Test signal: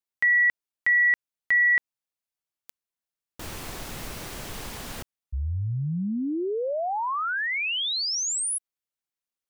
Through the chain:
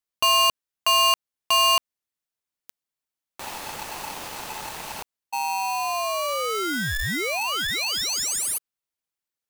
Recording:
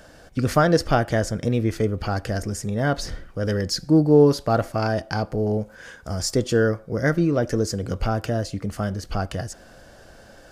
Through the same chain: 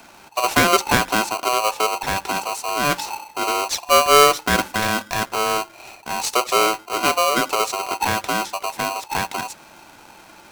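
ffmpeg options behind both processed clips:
-af "aeval=exprs='val(0)*sgn(sin(2*PI*870*n/s))':c=same,volume=1.5dB"

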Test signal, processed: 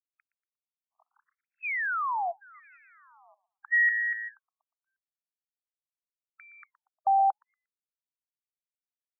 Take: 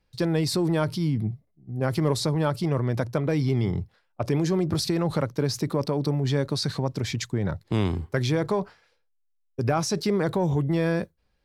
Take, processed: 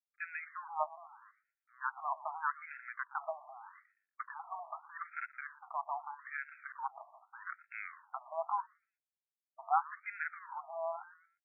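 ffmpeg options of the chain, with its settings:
-filter_complex "[0:a]adynamicsmooth=sensitivity=1:basefreq=6.6k,asuperstop=centerf=3700:order=4:qfactor=1.5,aeval=exprs='sgn(val(0))*max(abs(val(0))-0.00841,0)':c=same,asplit=2[a][b];[b]asplit=3[c][d][e];[c]adelay=118,afreqshift=-110,volume=-17dB[f];[d]adelay=236,afreqshift=-220,volume=-27.2dB[g];[e]adelay=354,afreqshift=-330,volume=-37.3dB[h];[f][g][h]amix=inputs=3:normalize=0[i];[a][i]amix=inputs=2:normalize=0,afftfilt=real='re*between(b*sr/1024,850*pow(1900/850,0.5+0.5*sin(2*PI*0.81*pts/sr))/1.41,850*pow(1900/850,0.5+0.5*sin(2*PI*0.81*pts/sr))*1.41)':imag='im*between(b*sr/1024,850*pow(1900/850,0.5+0.5*sin(2*PI*0.81*pts/sr))/1.41,850*pow(1900/850,0.5+0.5*sin(2*PI*0.81*pts/sr))*1.41)':win_size=1024:overlap=0.75"

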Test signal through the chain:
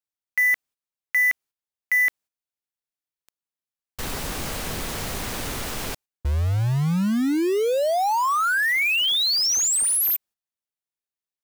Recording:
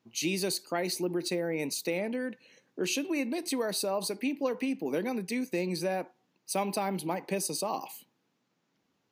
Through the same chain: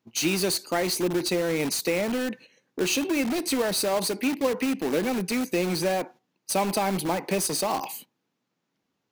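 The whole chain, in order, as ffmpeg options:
-filter_complex "[0:a]agate=range=-11dB:threshold=-52dB:ratio=16:detection=peak,asplit=2[a][b];[b]aeval=exprs='(mod(35.5*val(0)+1,2)-1)/35.5':c=same,volume=-7dB[c];[a][c]amix=inputs=2:normalize=0,volume=5.5dB"

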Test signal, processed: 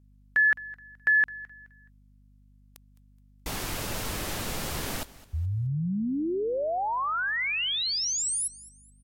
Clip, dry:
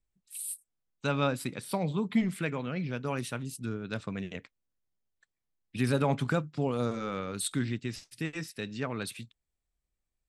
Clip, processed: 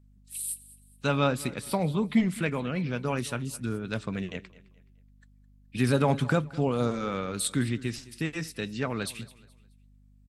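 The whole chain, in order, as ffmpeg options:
-af "aecho=1:1:212|424|636:0.106|0.035|0.0115,aeval=exprs='val(0)+0.001*(sin(2*PI*50*n/s)+sin(2*PI*2*50*n/s)/2+sin(2*PI*3*50*n/s)/3+sin(2*PI*4*50*n/s)/4+sin(2*PI*5*50*n/s)/5)':c=same,volume=3.5dB" -ar 44100 -c:a libvorbis -b:a 64k

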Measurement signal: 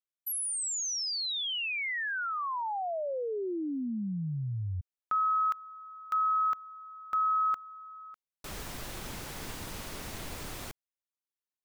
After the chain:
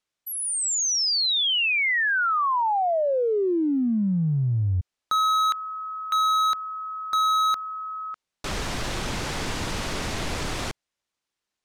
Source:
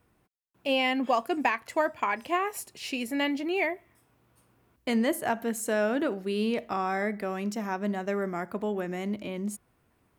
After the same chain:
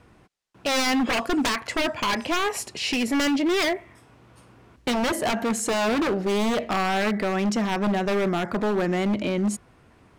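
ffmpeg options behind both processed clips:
-filter_complex "[0:a]lowpass=6.9k,asplit=2[a][b];[b]acompressor=threshold=-38dB:ratio=5:attack=0.14:release=23:knee=1:detection=peak,volume=3dB[c];[a][c]amix=inputs=2:normalize=0,aeval=exprs='0.0631*(abs(mod(val(0)/0.0631+3,4)-2)-1)':c=same,volume=6dB"

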